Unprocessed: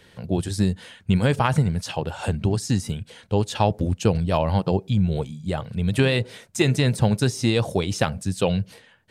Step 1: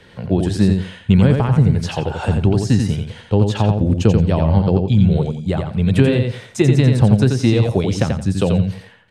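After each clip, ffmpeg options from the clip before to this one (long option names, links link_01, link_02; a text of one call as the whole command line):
ffmpeg -i in.wav -filter_complex "[0:a]aemphasis=mode=reproduction:type=50kf,acrossover=split=420[link_01][link_02];[link_02]acompressor=threshold=-31dB:ratio=6[link_03];[link_01][link_03]amix=inputs=2:normalize=0,asplit=2[link_04][link_05];[link_05]aecho=0:1:87|174|261:0.562|0.118|0.0248[link_06];[link_04][link_06]amix=inputs=2:normalize=0,volume=7dB" out.wav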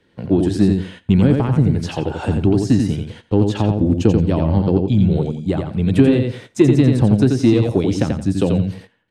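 ffmpeg -i in.wav -filter_complex "[0:a]equalizer=frequency=300:width=2:gain=10.5,agate=range=-13dB:threshold=-33dB:ratio=16:detection=peak,asplit=2[link_01][link_02];[link_02]asoftclip=type=tanh:threshold=-8.5dB,volume=-8dB[link_03];[link_01][link_03]amix=inputs=2:normalize=0,volume=-5.5dB" out.wav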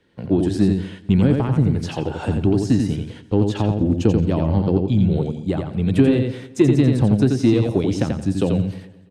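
ffmpeg -i in.wav -af "aecho=1:1:216|432|648:0.0891|0.0312|0.0109,volume=-2.5dB" out.wav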